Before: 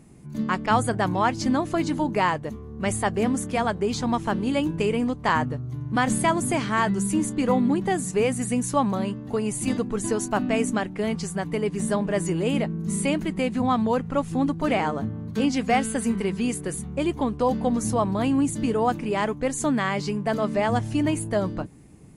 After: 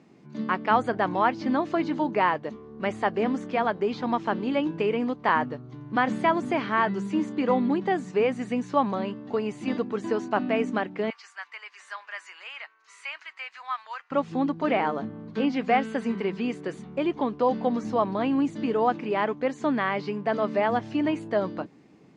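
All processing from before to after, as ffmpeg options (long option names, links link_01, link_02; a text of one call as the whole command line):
ffmpeg -i in.wav -filter_complex "[0:a]asettb=1/sr,asplit=3[link_01][link_02][link_03];[link_01]atrim=end=11.104[link_04];[link_02]atrim=start=11.1:end=14.11,asetpts=PTS-STARTPTS,afade=type=in:duration=0.004:curve=qsin,afade=type=out:start_time=3.006:duration=0.004:curve=qsin,highpass=frequency=1200:width=0.5412,highpass=frequency=1200:width=1.3066,equalizer=frequency=3500:width=3.3:gain=-6[link_05];[link_03]atrim=start=14.106[link_06];[link_04][link_05]acrossfade=duration=0.004:curve1=hsin:curve2=qsin[link_07];[link_07][link_06]acrossfade=duration=0.004:curve1=qsin:curve2=hsin,lowpass=frequency=5100:width=0.5412,lowpass=frequency=5100:width=1.3066,acrossover=split=3100[link_08][link_09];[link_09]acompressor=threshold=-52dB:ratio=4:attack=1:release=60[link_10];[link_08][link_10]amix=inputs=2:normalize=0,highpass=250" out.wav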